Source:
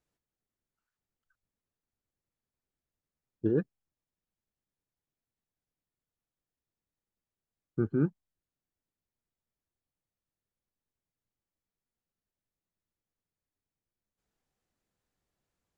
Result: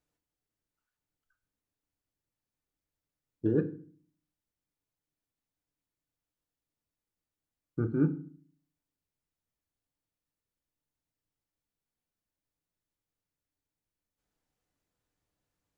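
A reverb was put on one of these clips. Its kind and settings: FDN reverb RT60 0.45 s, low-frequency decay 1.45×, high-frequency decay 0.85×, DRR 7 dB; trim -1 dB

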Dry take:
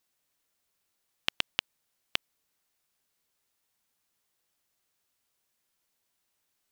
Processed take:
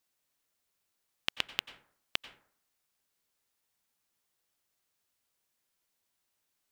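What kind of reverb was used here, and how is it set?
plate-style reverb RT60 0.58 s, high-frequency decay 0.45×, pre-delay 80 ms, DRR 13.5 dB; trim -2.5 dB

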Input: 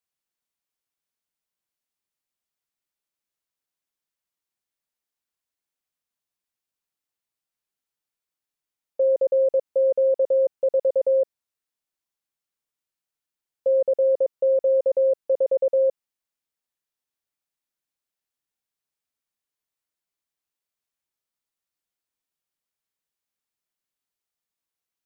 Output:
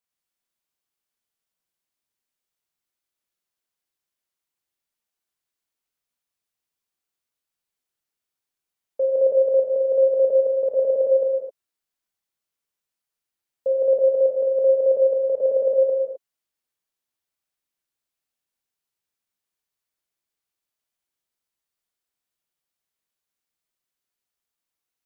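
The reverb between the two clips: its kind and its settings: gated-style reverb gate 280 ms flat, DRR -1 dB; trim -1.5 dB

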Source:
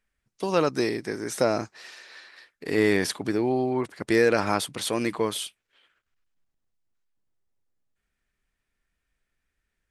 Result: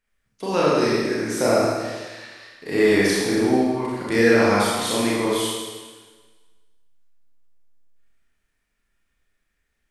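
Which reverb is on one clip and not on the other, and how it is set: Schroeder reverb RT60 1.4 s, combs from 27 ms, DRR -7 dB; trim -2 dB

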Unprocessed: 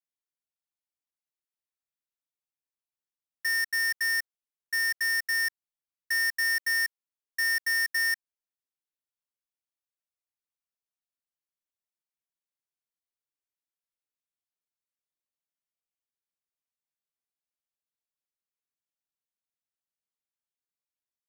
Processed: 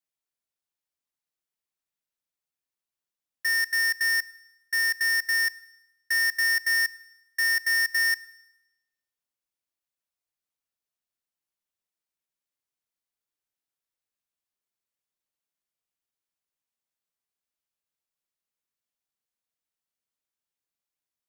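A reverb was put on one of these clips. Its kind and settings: Schroeder reverb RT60 0.95 s, combs from 26 ms, DRR 18.5 dB; trim +2.5 dB

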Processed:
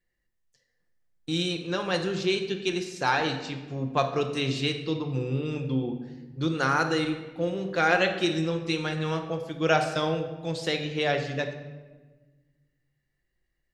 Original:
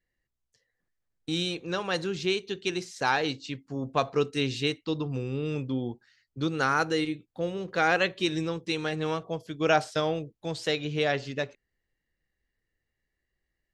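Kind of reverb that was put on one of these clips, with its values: simulated room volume 930 m³, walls mixed, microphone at 0.89 m

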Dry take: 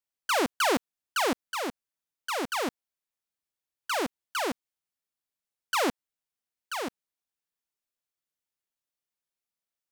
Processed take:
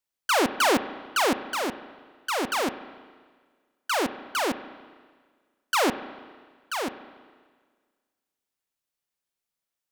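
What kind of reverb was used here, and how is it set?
spring tank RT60 1.6 s, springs 32/41 ms, chirp 70 ms, DRR 12 dB; trim +3.5 dB

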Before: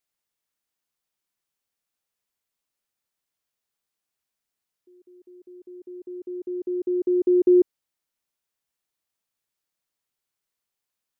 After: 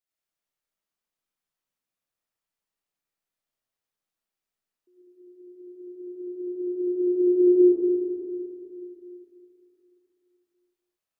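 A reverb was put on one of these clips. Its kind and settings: algorithmic reverb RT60 2.8 s, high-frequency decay 0.35×, pre-delay 40 ms, DRR -6.5 dB; trim -9.5 dB

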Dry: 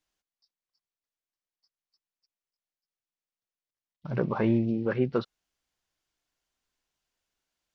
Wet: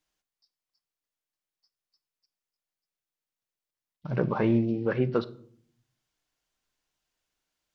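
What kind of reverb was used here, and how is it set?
simulated room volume 840 m³, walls furnished, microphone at 0.5 m; trim +1 dB

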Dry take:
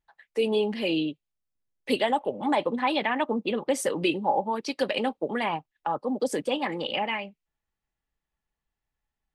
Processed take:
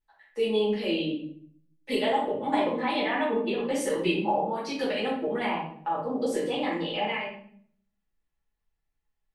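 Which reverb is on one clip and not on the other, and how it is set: simulated room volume 95 m³, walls mixed, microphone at 2.1 m; trim -10 dB

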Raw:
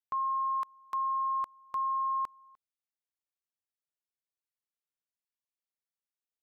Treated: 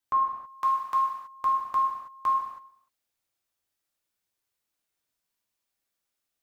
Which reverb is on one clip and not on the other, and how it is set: gated-style reverb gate 350 ms falling, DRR -4 dB; trim +6 dB

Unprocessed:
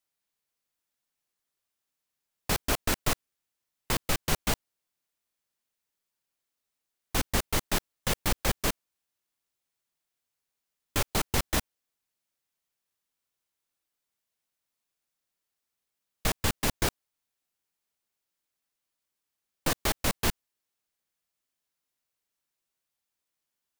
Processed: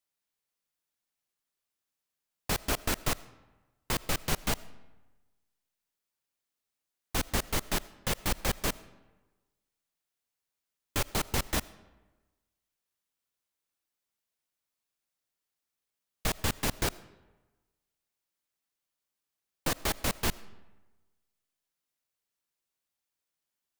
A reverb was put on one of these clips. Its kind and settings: algorithmic reverb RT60 1.2 s, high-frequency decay 0.65×, pre-delay 40 ms, DRR 19 dB; trim -2.5 dB

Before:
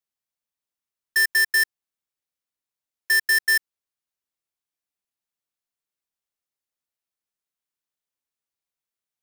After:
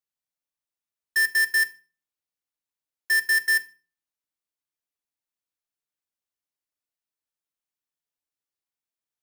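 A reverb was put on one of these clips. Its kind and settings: FDN reverb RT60 0.35 s, low-frequency decay 1.4×, high-frequency decay 0.9×, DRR 9.5 dB; trim -4 dB

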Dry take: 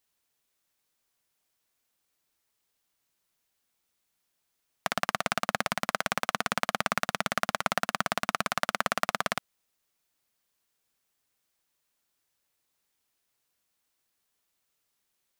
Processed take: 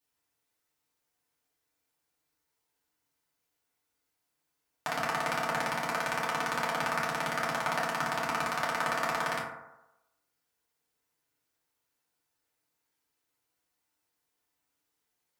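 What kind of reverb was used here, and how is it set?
FDN reverb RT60 0.94 s, low-frequency decay 0.8×, high-frequency decay 0.35×, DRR -7 dB; trim -8.5 dB

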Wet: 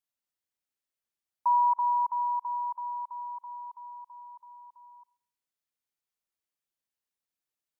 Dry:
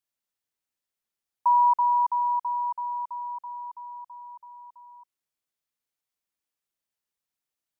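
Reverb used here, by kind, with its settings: Schroeder reverb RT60 0.62 s, combs from 30 ms, DRR 19.5 dB; trim -4 dB

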